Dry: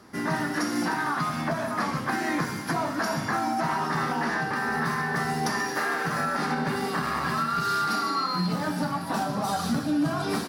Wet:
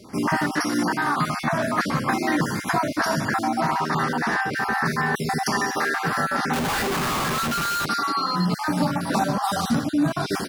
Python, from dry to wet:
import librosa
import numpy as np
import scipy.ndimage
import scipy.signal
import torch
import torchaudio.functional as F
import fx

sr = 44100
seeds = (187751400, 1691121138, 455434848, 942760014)

y = fx.spec_dropout(x, sr, seeds[0], share_pct=25)
y = fx.schmitt(y, sr, flips_db=-38.0, at=(6.53, 7.86))
y = fx.rider(y, sr, range_db=10, speed_s=0.5)
y = y * 10.0 ** (5.0 / 20.0)